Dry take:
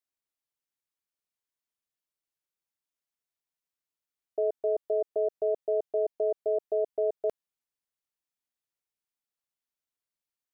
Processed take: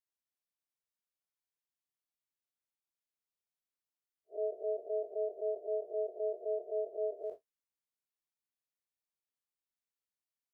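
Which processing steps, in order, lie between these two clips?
spectral blur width 92 ms; trim -5.5 dB

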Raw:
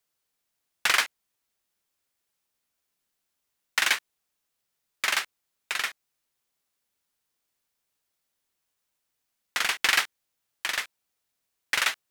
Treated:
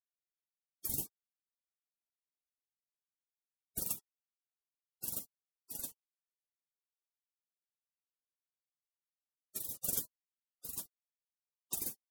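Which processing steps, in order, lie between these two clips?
spectral gate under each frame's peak -25 dB weak; 0.89–3.81 s: bass shelf 220 Hz +10.5 dB; trim +5 dB

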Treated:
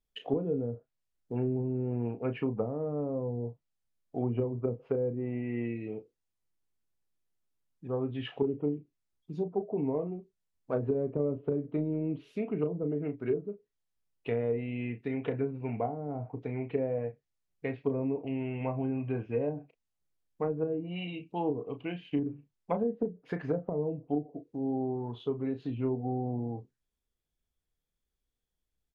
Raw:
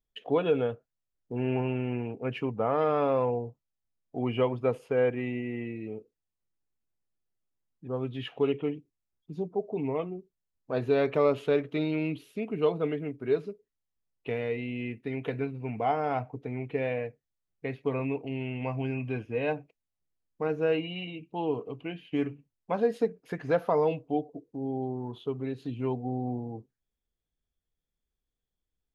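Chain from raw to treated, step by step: low-pass that closes with the level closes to 310 Hz, closed at -24 dBFS; doubling 34 ms -9.5 dB

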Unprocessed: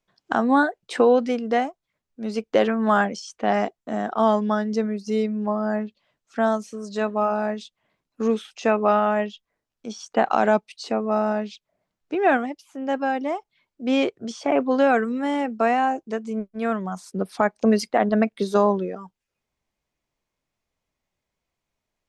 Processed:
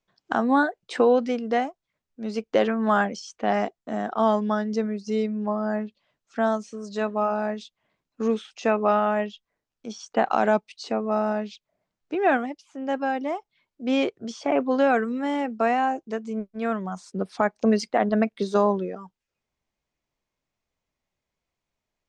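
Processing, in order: low-pass 8 kHz 24 dB/octave; trim -2 dB

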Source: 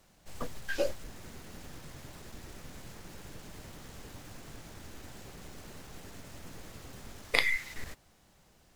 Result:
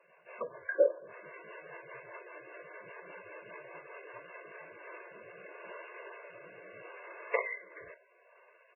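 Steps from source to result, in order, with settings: low-pass that closes with the level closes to 850 Hz, closed at -31.5 dBFS; comb 1.9 ms, depth 80%; rotary cabinet horn 5 Hz, later 0.75 Hz, at 4.29 s; band-pass 480–3400 Hz; on a send at -18.5 dB: reverberation RT60 0.70 s, pre-delay 5 ms; on the sum: trim +7 dB; MP3 8 kbps 16 kHz

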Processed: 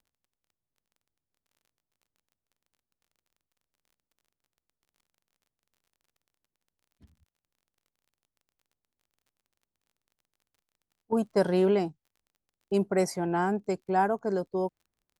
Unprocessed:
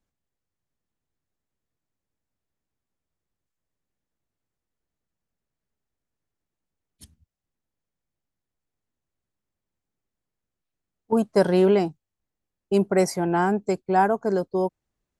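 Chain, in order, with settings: level-controlled noise filter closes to 1.2 kHz, open at -18 dBFS; crackle 29 per s -48 dBFS; trim -5.5 dB

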